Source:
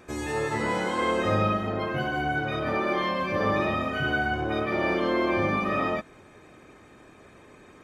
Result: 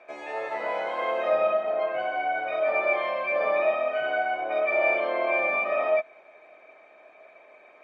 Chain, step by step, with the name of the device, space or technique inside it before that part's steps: tin-can telephone (BPF 610–3000 Hz; small resonant body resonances 640/2300 Hz, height 18 dB, ringing for 35 ms); gain -4 dB

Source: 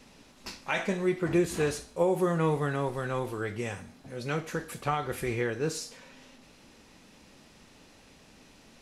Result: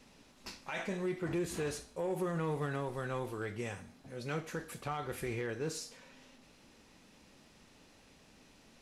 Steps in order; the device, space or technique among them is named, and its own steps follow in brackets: limiter into clipper (limiter -21.5 dBFS, peak gain reduction 7.5 dB; hard clip -23.5 dBFS, distortion -26 dB); gain -5.5 dB

